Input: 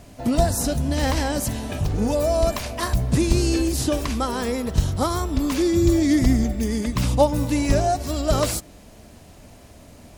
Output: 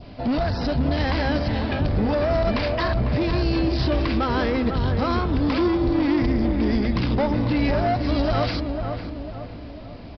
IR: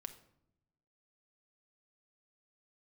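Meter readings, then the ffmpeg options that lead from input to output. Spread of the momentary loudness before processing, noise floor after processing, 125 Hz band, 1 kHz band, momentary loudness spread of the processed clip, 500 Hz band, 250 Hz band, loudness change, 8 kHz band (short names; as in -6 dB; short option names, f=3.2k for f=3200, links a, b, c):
7 LU, -38 dBFS, 0.0 dB, +0.5 dB, 8 LU, -0.5 dB, 0.0 dB, -0.5 dB, under -25 dB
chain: -filter_complex "[0:a]bandreject=f=1.8k:w=29,adynamicequalizer=threshold=0.00794:dfrequency=1800:dqfactor=1.7:tfrequency=1800:tqfactor=1.7:attack=5:release=100:ratio=0.375:range=2.5:mode=boostabove:tftype=bell,alimiter=limit=-14.5dB:level=0:latency=1:release=66,aresample=11025,asoftclip=type=tanh:threshold=-22.5dB,aresample=44100,asplit=2[a][b];[b]adelay=499,lowpass=f=1.2k:p=1,volume=-5dB,asplit=2[c][d];[d]adelay=499,lowpass=f=1.2k:p=1,volume=0.51,asplit=2[e][f];[f]adelay=499,lowpass=f=1.2k:p=1,volume=0.51,asplit=2[g][h];[h]adelay=499,lowpass=f=1.2k:p=1,volume=0.51,asplit=2[i][j];[j]adelay=499,lowpass=f=1.2k:p=1,volume=0.51,asplit=2[k][l];[l]adelay=499,lowpass=f=1.2k:p=1,volume=0.51[m];[a][c][e][g][i][k][m]amix=inputs=7:normalize=0,volume=4.5dB"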